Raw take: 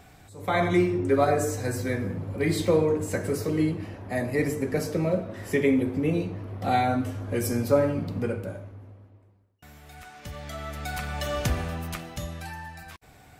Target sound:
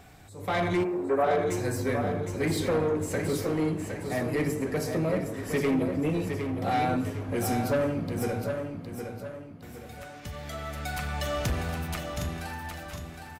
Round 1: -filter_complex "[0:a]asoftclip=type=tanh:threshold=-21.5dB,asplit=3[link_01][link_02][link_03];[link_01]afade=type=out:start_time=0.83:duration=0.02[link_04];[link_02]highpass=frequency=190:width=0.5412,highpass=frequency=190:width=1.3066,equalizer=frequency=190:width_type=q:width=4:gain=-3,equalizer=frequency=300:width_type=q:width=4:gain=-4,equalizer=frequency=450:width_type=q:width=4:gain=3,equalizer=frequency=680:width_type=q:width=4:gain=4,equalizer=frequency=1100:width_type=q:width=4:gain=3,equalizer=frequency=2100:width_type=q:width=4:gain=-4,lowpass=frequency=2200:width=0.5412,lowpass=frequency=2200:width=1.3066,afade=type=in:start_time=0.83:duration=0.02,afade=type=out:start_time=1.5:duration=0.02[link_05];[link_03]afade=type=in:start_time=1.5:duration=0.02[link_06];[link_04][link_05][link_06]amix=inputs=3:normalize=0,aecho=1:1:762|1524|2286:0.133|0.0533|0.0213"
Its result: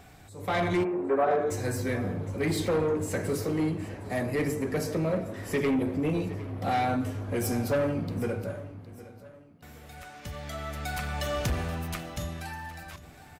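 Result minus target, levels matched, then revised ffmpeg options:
echo-to-direct −10.5 dB
-filter_complex "[0:a]asoftclip=type=tanh:threshold=-21.5dB,asplit=3[link_01][link_02][link_03];[link_01]afade=type=out:start_time=0.83:duration=0.02[link_04];[link_02]highpass=frequency=190:width=0.5412,highpass=frequency=190:width=1.3066,equalizer=frequency=190:width_type=q:width=4:gain=-3,equalizer=frequency=300:width_type=q:width=4:gain=-4,equalizer=frequency=450:width_type=q:width=4:gain=3,equalizer=frequency=680:width_type=q:width=4:gain=4,equalizer=frequency=1100:width_type=q:width=4:gain=3,equalizer=frequency=2100:width_type=q:width=4:gain=-4,lowpass=frequency=2200:width=0.5412,lowpass=frequency=2200:width=1.3066,afade=type=in:start_time=0.83:duration=0.02,afade=type=out:start_time=1.5:duration=0.02[link_05];[link_03]afade=type=in:start_time=1.5:duration=0.02[link_06];[link_04][link_05][link_06]amix=inputs=3:normalize=0,aecho=1:1:762|1524|2286|3048|3810:0.447|0.179|0.0715|0.0286|0.0114"

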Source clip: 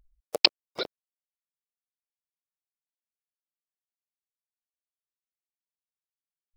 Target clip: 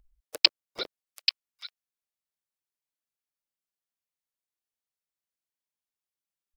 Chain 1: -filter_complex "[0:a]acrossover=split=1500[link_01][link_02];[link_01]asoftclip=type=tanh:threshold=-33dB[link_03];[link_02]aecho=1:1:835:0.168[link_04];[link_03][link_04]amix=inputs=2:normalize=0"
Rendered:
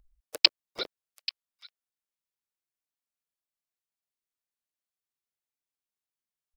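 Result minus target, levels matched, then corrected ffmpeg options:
echo-to-direct −9 dB
-filter_complex "[0:a]acrossover=split=1500[link_01][link_02];[link_01]asoftclip=type=tanh:threshold=-33dB[link_03];[link_02]aecho=1:1:835:0.473[link_04];[link_03][link_04]amix=inputs=2:normalize=0"

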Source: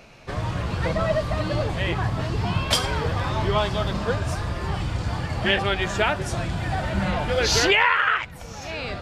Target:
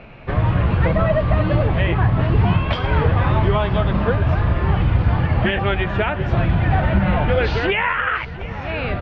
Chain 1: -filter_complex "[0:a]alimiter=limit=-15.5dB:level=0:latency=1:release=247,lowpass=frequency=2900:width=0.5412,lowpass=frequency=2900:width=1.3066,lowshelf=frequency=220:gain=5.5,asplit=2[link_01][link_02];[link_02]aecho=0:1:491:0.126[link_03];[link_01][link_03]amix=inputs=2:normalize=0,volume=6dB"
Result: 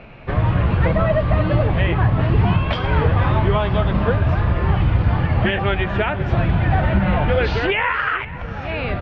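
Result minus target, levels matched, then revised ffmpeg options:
echo 215 ms early
-filter_complex "[0:a]alimiter=limit=-15.5dB:level=0:latency=1:release=247,lowpass=frequency=2900:width=0.5412,lowpass=frequency=2900:width=1.3066,lowshelf=frequency=220:gain=5.5,asplit=2[link_01][link_02];[link_02]aecho=0:1:706:0.126[link_03];[link_01][link_03]amix=inputs=2:normalize=0,volume=6dB"

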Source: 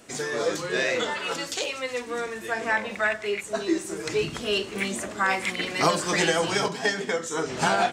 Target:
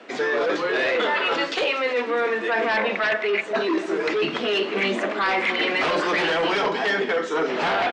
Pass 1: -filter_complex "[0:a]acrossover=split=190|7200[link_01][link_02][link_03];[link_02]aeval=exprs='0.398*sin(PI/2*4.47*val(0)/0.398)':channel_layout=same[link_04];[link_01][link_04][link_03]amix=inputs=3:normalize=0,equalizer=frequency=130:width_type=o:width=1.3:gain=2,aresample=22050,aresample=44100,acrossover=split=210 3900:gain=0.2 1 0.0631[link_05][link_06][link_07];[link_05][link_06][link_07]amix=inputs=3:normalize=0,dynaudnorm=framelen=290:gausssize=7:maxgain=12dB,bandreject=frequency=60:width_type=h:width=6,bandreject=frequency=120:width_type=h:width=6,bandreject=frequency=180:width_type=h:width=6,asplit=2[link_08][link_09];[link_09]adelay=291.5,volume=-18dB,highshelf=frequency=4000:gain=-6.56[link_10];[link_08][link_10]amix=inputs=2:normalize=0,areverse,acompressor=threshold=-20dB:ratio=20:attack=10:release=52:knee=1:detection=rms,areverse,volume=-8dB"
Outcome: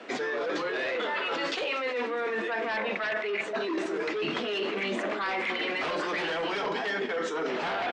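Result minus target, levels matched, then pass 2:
downward compressor: peak gain reduction +8.5 dB
-filter_complex "[0:a]acrossover=split=190|7200[link_01][link_02][link_03];[link_02]aeval=exprs='0.398*sin(PI/2*4.47*val(0)/0.398)':channel_layout=same[link_04];[link_01][link_04][link_03]amix=inputs=3:normalize=0,equalizer=frequency=130:width_type=o:width=1.3:gain=2,aresample=22050,aresample=44100,acrossover=split=210 3900:gain=0.2 1 0.0631[link_05][link_06][link_07];[link_05][link_06][link_07]amix=inputs=3:normalize=0,dynaudnorm=framelen=290:gausssize=7:maxgain=12dB,bandreject=frequency=60:width_type=h:width=6,bandreject=frequency=120:width_type=h:width=6,bandreject=frequency=180:width_type=h:width=6,asplit=2[link_08][link_09];[link_09]adelay=291.5,volume=-18dB,highshelf=frequency=4000:gain=-6.56[link_10];[link_08][link_10]amix=inputs=2:normalize=0,areverse,acompressor=threshold=-11dB:ratio=20:attack=10:release=52:knee=1:detection=rms,areverse,volume=-8dB"

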